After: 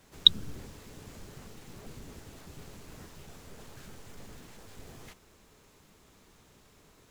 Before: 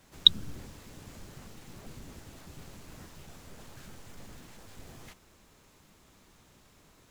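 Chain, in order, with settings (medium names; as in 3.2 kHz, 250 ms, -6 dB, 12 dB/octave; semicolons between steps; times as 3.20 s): peaking EQ 430 Hz +5 dB 0.26 oct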